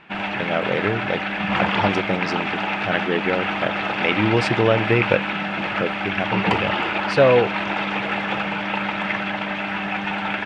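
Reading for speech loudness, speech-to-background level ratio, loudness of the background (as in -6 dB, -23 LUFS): -23.0 LUFS, 0.5 dB, -23.5 LUFS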